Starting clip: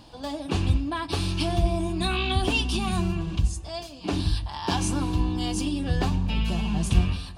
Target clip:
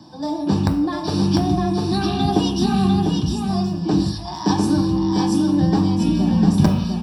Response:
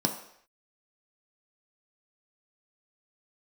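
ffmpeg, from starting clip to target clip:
-filter_complex "[0:a]highpass=48,acrossover=split=210|920[a][b][c];[a]aeval=exprs='(mod(4.47*val(0)+1,2)-1)/4.47':c=same[d];[d][b][c]amix=inputs=3:normalize=0,asetrate=46305,aresample=44100,aecho=1:1:699:0.631[e];[1:a]atrim=start_sample=2205,afade=t=out:st=0.28:d=0.01,atrim=end_sample=12789[f];[e][f]afir=irnorm=-1:irlink=0,volume=-7dB"

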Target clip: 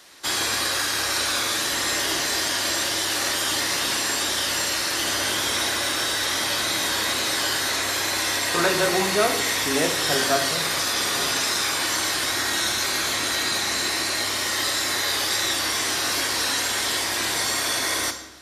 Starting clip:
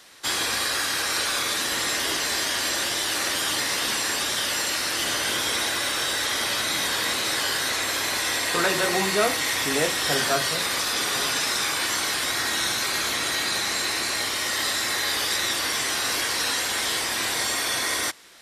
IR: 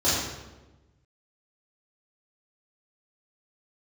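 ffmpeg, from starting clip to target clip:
-filter_complex "[0:a]asplit=2[a][b];[1:a]atrim=start_sample=2205,highshelf=f=8.9k:g=11[c];[b][c]afir=irnorm=-1:irlink=0,volume=-23dB[d];[a][d]amix=inputs=2:normalize=0"

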